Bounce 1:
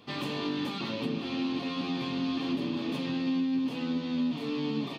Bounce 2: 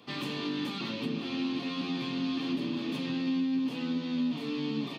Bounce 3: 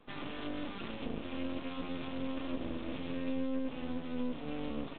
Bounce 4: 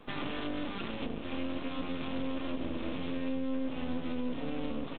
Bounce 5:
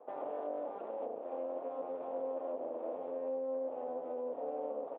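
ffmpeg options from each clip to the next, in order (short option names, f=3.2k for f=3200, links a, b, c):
-filter_complex "[0:a]highpass=120,acrossover=split=430|1100[a][b][c];[b]alimiter=level_in=20.5dB:limit=-24dB:level=0:latency=1,volume=-20.5dB[d];[a][d][c]amix=inputs=3:normalize=0"
-af "lowshelf=f=150:g=-6,adynamicsmooth=sensitivity=3:basefreq=2.4k,aresample=8000,aeval=exprs='max(val(0),0)':c=same,aresample=44100"
-filter_complex "[0:a]asplit=2[a][b];[b]aecho=0:1:1169:0.299[c];[a][c]amix=inputs=2:normalize=0,alimiter=level_in=8dB:limit=-24dB:level=0:latency=1:release=383,volume=-8dB,volume=8dB"
-af "asuperpass=centerf=620:order=4:qfactor=1.8,volume=6dB"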